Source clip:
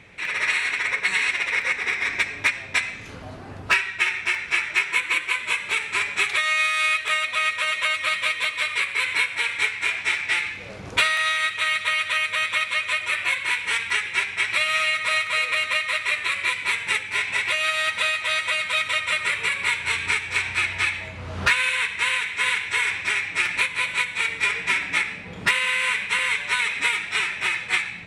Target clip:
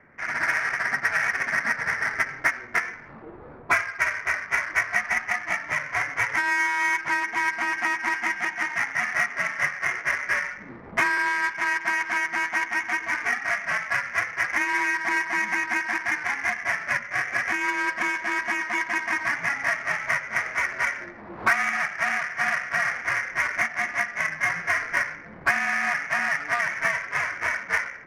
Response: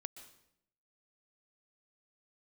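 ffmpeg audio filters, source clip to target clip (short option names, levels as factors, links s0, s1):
-af "highpass=f=400:t=q:w=0.5412,highpass=f=400:t=q:w=1.307,lowpass=f=2500:t=q:w=0.5176,lowpass=f=2500:t=q:w=0.7071,lowpass=f=2500:t=q:w=1.932,afreqshift=-290,adynamicsmooth=sensitivity=3.5:basefreq=1700"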